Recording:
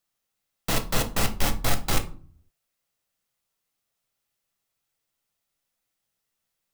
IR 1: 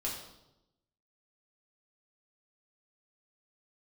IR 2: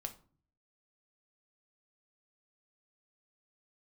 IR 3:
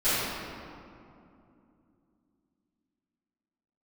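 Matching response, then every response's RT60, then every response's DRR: 2; 0.90, 0.45, 2.7 seconds; −4.5, 6.0, −20.0 decibels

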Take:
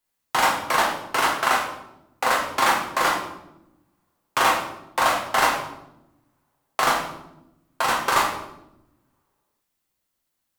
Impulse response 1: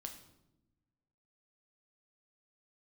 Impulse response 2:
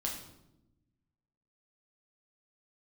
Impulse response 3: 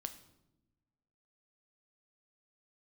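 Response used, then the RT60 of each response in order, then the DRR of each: 2; non-exponential decay, 0.90 s, non-exponential decay; 3.5, −2.0, 8.0 decibels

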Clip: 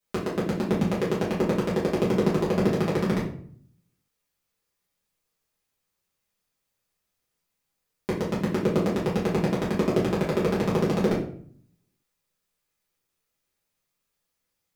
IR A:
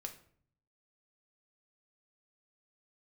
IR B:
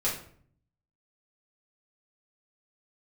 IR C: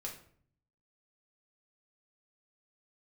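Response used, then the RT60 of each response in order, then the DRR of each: B; 0.55, 0.55, 0.55 seconds; 4.0, −8.5, −2.0 decibels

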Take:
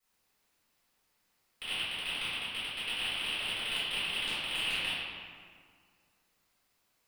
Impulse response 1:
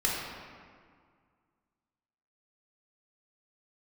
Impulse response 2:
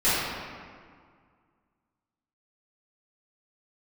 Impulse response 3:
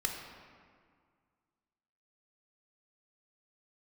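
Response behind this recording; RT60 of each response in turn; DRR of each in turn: 2; 1.9, 1.9, 1.9 seconds; −4.5, −14.0, 1.5 decibels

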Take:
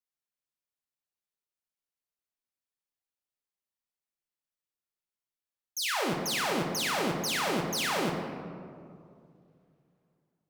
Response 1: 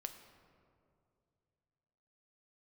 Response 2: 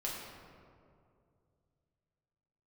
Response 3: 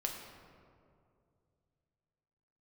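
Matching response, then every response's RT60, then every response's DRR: 3; 2.5, 2.4, 2.4 seconds; 6.5, −5.0, 0.5 decibels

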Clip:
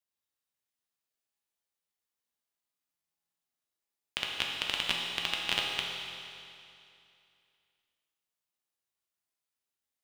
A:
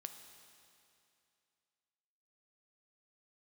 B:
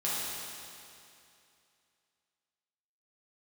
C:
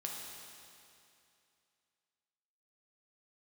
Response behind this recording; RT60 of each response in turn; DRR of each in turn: C; 2.6, 2.6, 2.6 seconds; 6.5, −9.0, −1.5 decibels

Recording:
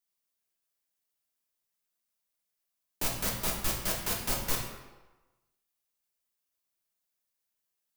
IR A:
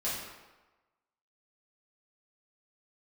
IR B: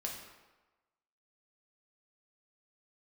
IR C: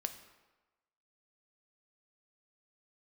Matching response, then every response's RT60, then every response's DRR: B; 1.2, 1.2, 1.2 seconds; −9.5, −1.0, 7.5 decibels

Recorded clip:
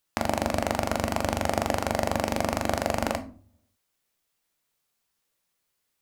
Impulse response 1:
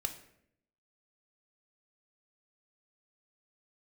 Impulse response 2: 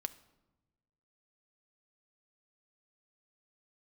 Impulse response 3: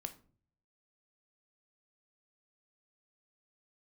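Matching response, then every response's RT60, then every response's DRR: 3; 0.70, 1.1, 0.45 seconds; 5.5, 11.0, 7.5 decibels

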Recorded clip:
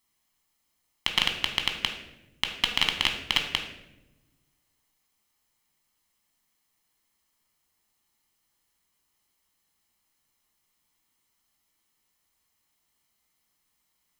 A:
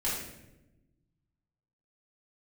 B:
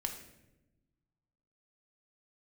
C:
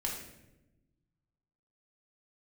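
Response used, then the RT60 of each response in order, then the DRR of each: B; 0.95, 1.0, 0.95 seconds; −9.0, 3.0, −2.5 decibels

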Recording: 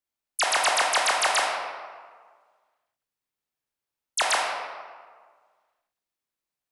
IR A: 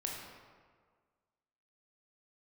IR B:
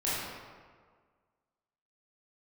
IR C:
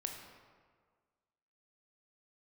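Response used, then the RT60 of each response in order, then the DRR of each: A; 1.7, 1.7, 1.7 seconds; −1.5, −10.0, 2.5 decibels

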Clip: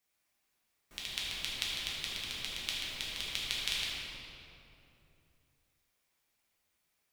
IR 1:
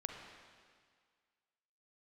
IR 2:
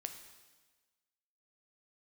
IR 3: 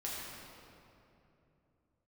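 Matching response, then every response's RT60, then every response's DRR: 3; 1.9, 1.3, 2.9 seconds; 2.5, 6.0, −7.0 decibels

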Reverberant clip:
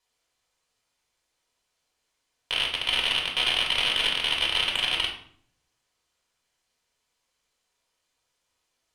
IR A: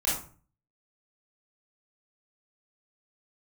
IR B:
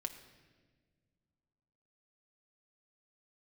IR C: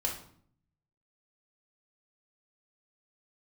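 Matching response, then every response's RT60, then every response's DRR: C; 0.40 s, non-exponential decay, 0.60 s; −7.5, 5.5, −2.0 decibels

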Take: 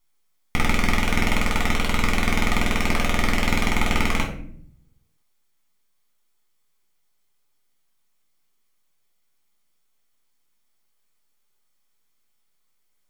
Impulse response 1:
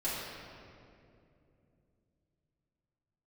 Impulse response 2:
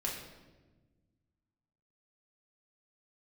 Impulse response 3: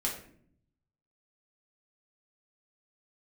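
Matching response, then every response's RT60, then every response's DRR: 3; 2.7, 1.2, 0.60 seconds; −10.5, −3.5, −2.5 decibels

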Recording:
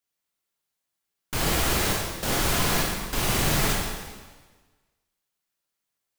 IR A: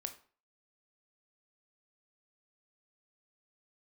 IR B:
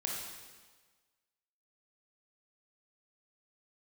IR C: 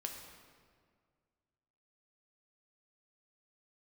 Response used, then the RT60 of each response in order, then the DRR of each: B; 0.40, 1.4, 1.9 seconds; 7.0, −2.0, 2.0 decibels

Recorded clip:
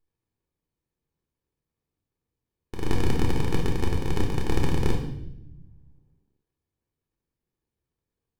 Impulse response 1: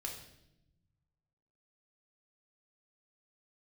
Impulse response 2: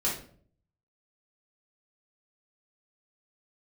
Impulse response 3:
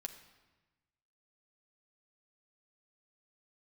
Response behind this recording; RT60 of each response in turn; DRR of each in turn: 1; 0.85, 0.50, 1.2 seconds; −0.5, −6.0, 5.0 decibels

